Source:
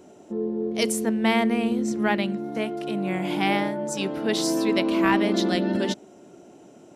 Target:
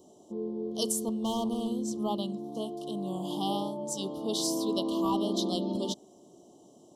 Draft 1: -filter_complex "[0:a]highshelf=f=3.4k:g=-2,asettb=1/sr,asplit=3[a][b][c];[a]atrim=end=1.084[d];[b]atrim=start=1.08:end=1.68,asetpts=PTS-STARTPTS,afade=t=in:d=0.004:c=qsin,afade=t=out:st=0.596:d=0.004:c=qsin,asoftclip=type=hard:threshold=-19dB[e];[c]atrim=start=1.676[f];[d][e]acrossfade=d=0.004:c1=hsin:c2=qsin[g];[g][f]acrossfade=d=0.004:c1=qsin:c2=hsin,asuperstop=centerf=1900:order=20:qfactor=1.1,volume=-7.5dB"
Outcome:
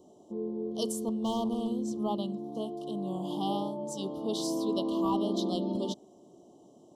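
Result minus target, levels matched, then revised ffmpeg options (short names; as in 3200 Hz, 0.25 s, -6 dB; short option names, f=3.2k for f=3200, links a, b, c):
8000 Hz band -6.5 dB
-filter_complex "[0:a]highshelf=f=3.4k:g=6.5,asettb=1/sr,asplit=3[a][b][c];[a]atrim=end=1.084[d];[b]atrim=start=1.08:end=1.68,asetpts=PTS-STARTPTS,afade=t=in:d=0.004:c=qsin,afade=t=out:st=0.596:d=0.004:c=qsin,asoftclip=type=hard:threshold=-19dB[e];[c]atrim=start=1.676[f];[d][e]acrossfade=d=0.004:c1=hsin:c2=qsin[g];[g][f]acrossfade=d=0.004:c1=qsin:c2=hsin,asuperstop=centerf=1900:order=20:qfactor=1.1,volume=-7.5dB"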